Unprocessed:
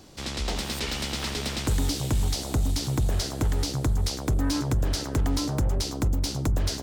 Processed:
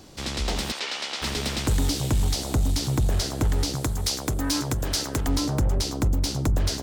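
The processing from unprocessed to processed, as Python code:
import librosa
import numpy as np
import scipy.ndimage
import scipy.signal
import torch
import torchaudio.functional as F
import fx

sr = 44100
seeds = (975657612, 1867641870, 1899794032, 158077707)

p1 = fx.tilt_eq(x, sr, slope=1.5, at=(3.75, 5.28))
p2 = np.clip(10.0 ** (22.0 / 20.0) * p1, -1.0, 1.0) / 10.0 ** (22.0 / 20.0)
p3 = p1 + (p2 * 10.0 ** (-10.0 / 20.0))
y = fx.bandpass_edges(p3, sr, low_hz=590.0, high_hz=6100.0, at=(0.71, 1.21), fade=0.02)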